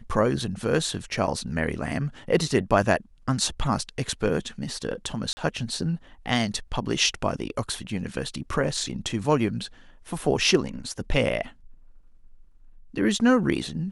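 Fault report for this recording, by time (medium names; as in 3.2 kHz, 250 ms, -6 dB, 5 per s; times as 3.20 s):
5.33–5.37 s: dropout 40 ms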